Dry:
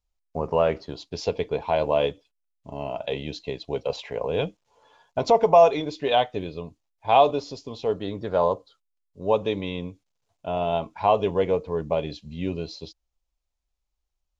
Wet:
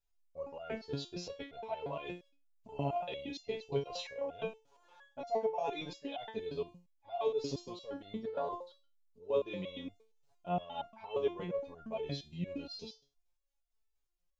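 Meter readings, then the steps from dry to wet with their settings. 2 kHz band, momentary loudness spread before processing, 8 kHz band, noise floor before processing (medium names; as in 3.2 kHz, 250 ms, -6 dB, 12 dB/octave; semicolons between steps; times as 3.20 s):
-13.0 dB, 17 LU, no reading, -80 dBFS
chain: reverse; compression 8:1, threshold -28 dBFS, peak gain reduction 17 dB; reverse; resonator arpeggio 8.6 Hz 140–700 Hz; trim +8 dB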